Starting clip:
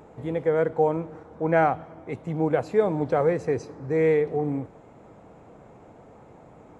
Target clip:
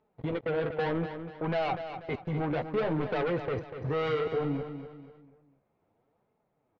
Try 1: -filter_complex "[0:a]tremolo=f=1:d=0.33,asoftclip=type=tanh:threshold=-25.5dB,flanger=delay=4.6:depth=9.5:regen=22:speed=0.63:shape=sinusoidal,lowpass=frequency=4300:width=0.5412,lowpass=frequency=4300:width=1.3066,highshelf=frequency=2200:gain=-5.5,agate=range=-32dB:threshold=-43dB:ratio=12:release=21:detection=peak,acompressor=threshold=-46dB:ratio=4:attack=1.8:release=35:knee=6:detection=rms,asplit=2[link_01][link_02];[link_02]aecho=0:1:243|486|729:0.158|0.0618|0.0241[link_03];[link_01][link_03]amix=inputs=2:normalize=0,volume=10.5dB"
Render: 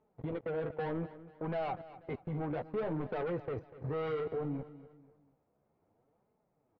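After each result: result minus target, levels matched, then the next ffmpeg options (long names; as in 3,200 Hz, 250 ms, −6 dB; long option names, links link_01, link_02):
4,000 Hz band −7.0 dB; downward compressor: peak gain reduction +5 dB; echo-to-direct −6.5 dB
-filter_complex "[0:a]tremolo=f=1:d=0.33,asoftclip=type=tanh:threshold=-25.5dB,flanger=delay=4.6:depth=9.5:regen=22:speed=0.63:shape=sinusoidal,lowpass=frequency=4300:width=0.5412,lowpass=frequency=4300:width=1.3066,highshelf=frequency=2200:gain=6,agate=range=-32dB:threshold=-43dB:ratio=12:release=21:detection=peak,acompressor=threshold=-46dB:ratio=4:attack=1.8:release=35:knee=6:detection=rms,asplit=2[link_01][link_02];[link_02]aecho=0:1:243|486|729:0.158|0.0618|0.0241[link_03];[link_01][link_03]amix=inputs=2:normalize=0,volume=10.5dB"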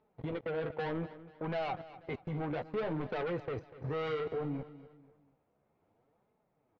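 downward compressor: peak gain reduction +5.5 dB; echo-to-direct −6.5 dB
-filter_complex "[0:a]tremolo=f=1:d=0.33,asoftclip=type=tanh:threshold=-25.5dB,flanger=delay=4.6:depth=9.5:regen=22:speed=0.63:shape=sinusoidal,lowpass=frequency=4300:width=0.5412,lowpass=frequency=4300:width=1.3066,highshelf=frequency=2200:gain=6,agate=range=-32dB:threshold=-43dB:ratio=12:release=21:detection=peak,acompressor=threshold=-38.5dB:ratio=4:attack=1.8:release=35:knee=6:detection=rms,asplit=2[link_01][link_02];[link_02]aecho=0:1:243|486|729:0.158|0.0618|0.0241[link_03];[link_01][link_03]amix=inputs=2:normalize=0,volume=10.5dB"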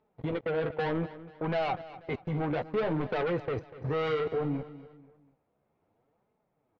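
echo-to-direct −6.5 dB
-filter_complex "[0:a]tremolo=f=1:d=0.33,asoftclip=type=tanh:threshold=-25.5dB,flanger=delay=4.6:depth=9.5:regen=22:speed=0.63:shape=sinusoidal,lowpass=frequency=4300:width=0.5412,lowpass=frequency=4300:width=1.3066,highshelf=frequency=2200:gain=6,agate=range=-32dB:threshold=-43dB:ratio=12:release=21:detection=peak,acompressor=threshold=-38.5dB:ratio=4:attack=1.8:release=35:knee=6:detection=rms,asplit=2[link_01][link_02];[link_02]aecho=0:1:243|486|729|972:0.335|0.131|0.0509|0.0199[link_03];[link_01][link_03]amix=inputs=2:normalize=0,volume=10.5dB"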